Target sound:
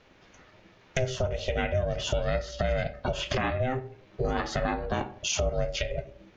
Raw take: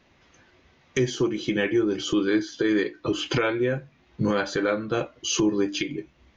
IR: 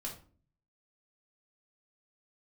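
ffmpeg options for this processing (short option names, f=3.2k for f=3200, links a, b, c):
-filter_complex "[0:a]asplit=2[a][b];[1:a]atrim=start_sample=2205,lowpass=3.3k[c];[b][c]afir=irnorm=-1:irlink=0,volume=-8.5dB[d];[a][d]amix=inputs=2:normalize=0,acompressor=threshold=-28dB:ratio=2.5,aeval=exprs='val(0)*sin(2*PI*260*n/s)':c=same,volume=3.5dB"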